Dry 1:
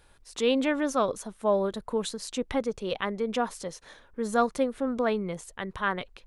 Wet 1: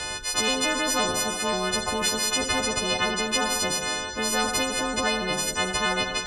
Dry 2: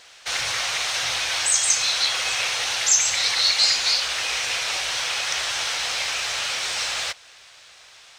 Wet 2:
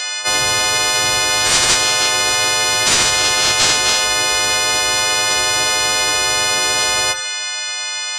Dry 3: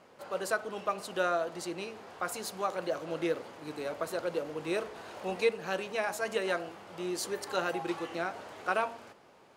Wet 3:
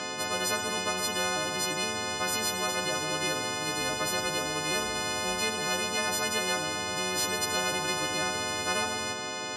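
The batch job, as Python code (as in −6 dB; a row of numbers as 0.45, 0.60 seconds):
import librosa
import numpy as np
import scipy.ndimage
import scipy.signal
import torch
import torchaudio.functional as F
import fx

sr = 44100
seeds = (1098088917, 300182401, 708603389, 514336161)

p1 = fx.freq_snap(x, sr, grid_st=3)
p2 = fx.high_shelf(p1, sr, hz=3100.0, db=8.5)
p3 = 10.0 ** (-5.0 / 20.0) * np.tanh(p2 / 10.0 ** (-5.0 / 20.0))
p4 = p2 + (p3 * librosa.db_to_amplitude(-9.5))
p5 = fx.highpass(p4, sr, hz=84.0, slope=6)
p6 = fx.rev_double_slope(p5, sr, seeds[0], early_s=0.66, late_s=2.7, knee_db=-26, drr_db=11.5)
p7 = np.clip(10.0 ** (-3.0 / 20.0) * p6, -1.0, 1.0) / 10.0 ** (-3.0 / 20.0)
p8 = scipy.signal.sosfilt(scipy.signal.butter(4, 6400.0, 'lowpass', fs=sr, output='sos'), p7)
p9 = fx.spectral_comp(p8, sr, ratio=4.0)
y = p9 * librosa.db_to_amplitude(-5.5)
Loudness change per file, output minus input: +5.0, +7.5, +6.0 LU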